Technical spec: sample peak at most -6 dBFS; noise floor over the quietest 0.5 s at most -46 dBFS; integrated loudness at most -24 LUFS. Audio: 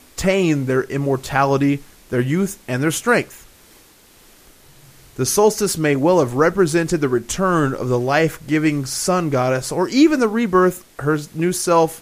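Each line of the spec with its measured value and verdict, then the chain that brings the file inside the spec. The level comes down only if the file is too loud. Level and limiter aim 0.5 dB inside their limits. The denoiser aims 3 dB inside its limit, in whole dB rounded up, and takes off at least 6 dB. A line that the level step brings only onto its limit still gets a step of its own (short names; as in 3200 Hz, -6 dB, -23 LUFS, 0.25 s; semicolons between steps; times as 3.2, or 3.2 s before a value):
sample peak -3.5 dBFS: fail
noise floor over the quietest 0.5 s -49 dBFS: OK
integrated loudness -18.0 LUFS: fail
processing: gain -6.5 dB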